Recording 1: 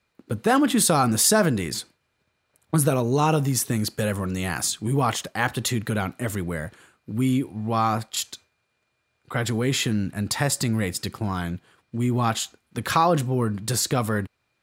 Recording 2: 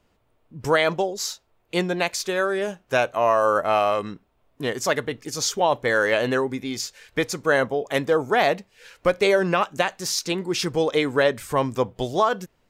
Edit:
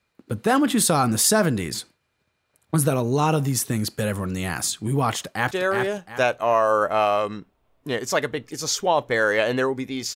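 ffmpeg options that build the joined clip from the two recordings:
-filter_complex "[0:a]apad=whole_dur=10.15,atrim=end=10.15,atrim=end=5.512[s0];[1:a]atrim=start=2.248:end=6.89[s1];[s0][s1]acrossfade=d=0.004:c1=hsin:c2=hsin,asplit=2[s2][s3];[s3]afade=t=in:st=5.2:d=0.01,afade=t=out:st=5.51:d=0.01,aecho=0:1:360|720|1080|1440:0.630957|0.189287|0.0567862|0.0170358[s4];[s2][s4]amix=inputs=2:normalize=0"

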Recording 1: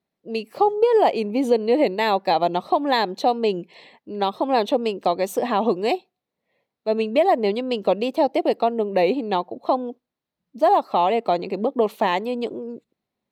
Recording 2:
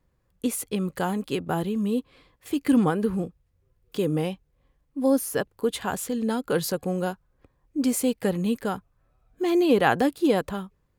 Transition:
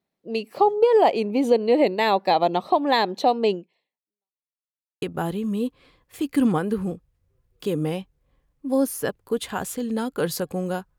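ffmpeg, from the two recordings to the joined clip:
-filter_complex "[0:a]apad=whole_dur=10.98,atrim=end=10.98,asplit=2[s0][s1];[s0]atrim=end=4.46,asetpts=PTS-STARTPTS,afade=t=out:st=3.53:d=0.93:c=exp[s2];[s1]atrim=start=4.46:end=5.02,asetpts=PTS-STARTPTS,volume=0[s3];[1:a]atrim=start=1.34:end=7.3,asetpts=PTS-STARTPTS,afade=t=in:d=0.004:c=hsin[s4];[s2][s3][s4]concat=n=3:v=0:a=1"

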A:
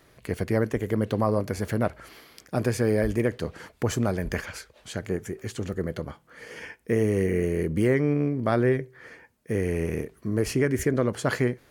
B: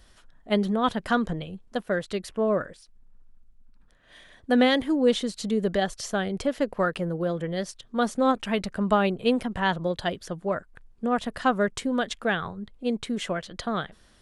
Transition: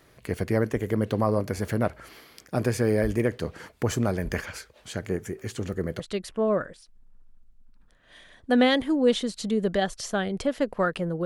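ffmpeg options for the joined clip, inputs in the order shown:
-filter_complex "[0:a]apad=whole_dur=11.25,atrim=end=11.25,atrim=end=6.002[s0];[1:a]atrim=start=1.998:end=7.25[s1];[s0][s1]acrossfade=d=0.004:c1=hsin:c2=hsin"

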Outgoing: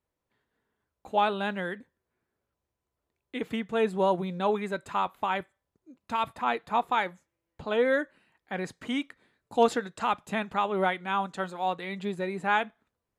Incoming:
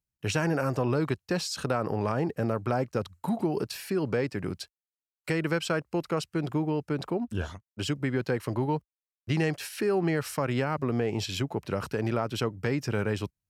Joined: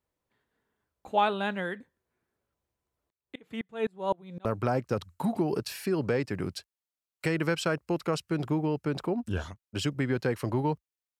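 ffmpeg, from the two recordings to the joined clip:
-filter_complex "[0:a]asettb=1/sr,asplit=3[s0][s1][s2];[s0]atrim=end=3.104[s3];[s1]atrim=start=3.1:end=4.45,asetpts=PTS-STARTPTS,afade=t=in:d=0.004:c=qsin,afade=t=out:st=1.346:d=0.004:c=qsin,aeval=exprs='val(0)*pow(10,-30*if(lt(mod(-3.9*n/s,1),2*abs(-3.9)/1000),1-mod(-3.9*n/s,1)/(2*abs(-3.9)/1000),(mod(-3.9*n/s,1)-2*abs(-3.9)/1000)/(1-2*abs(-3.9)/1000))/20)':c=same[s4];[s2]atrim=start=4.446[s5];[s3][s4]acrossfade=d=0.004:c1=hsin:c2=qsin[s6];[s6][s5]acrossfade=d=0.004:c1=qsin:c2=hsin,apad=whole_dur=11.19,atrim=end=11.19,atrim=end=4.452[s7];[1:a]atrim=start=2.488:end=9.23[s8];[s7][s8]acrossfade=d=0.004:c1=hsin:c2=hsin"

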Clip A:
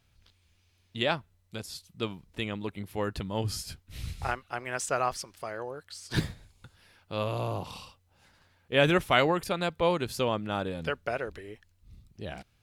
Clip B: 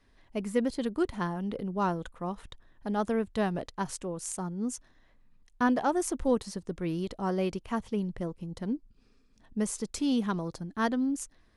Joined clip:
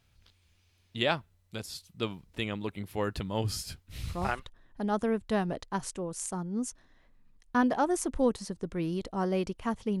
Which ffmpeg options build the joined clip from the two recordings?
-filter_complex "[0:a]apad=whole_dur=10,atrim=end=10,atrim=end=4.49,asetpts=PTS-STARTPTS[s0];[1:a]atrim=start=2.09:end=8.06,asetpts=PTS-STARTPTS[s1];[s0][s1]acrossfade=d=0.46:c1=log:c2=log"

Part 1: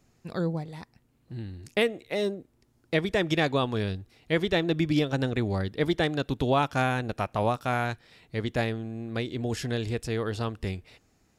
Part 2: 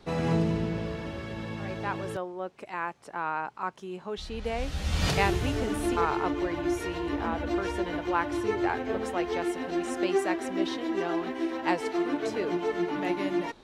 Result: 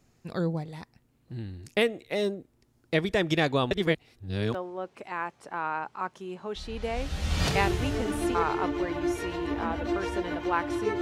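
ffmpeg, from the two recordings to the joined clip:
-filter_complex "[0:a]apad=whole_dur=11.01,atrim=end=11.01,asplit=2[s0][s1];[s0]atrim=end=3.712[s2];[s1]atrim=start=3.708:end=4.542,asetpts=PTS-STARTPTS,areverse[s3];[1:a]atrim=start=2.158:end=8.63[s4];[s2][s3]acrossfade=d=0.004:c1=hsin:c2=hsin[s5];[s5][s4]acrossfade=d=0.004:c1=hsin:c2=hsin"

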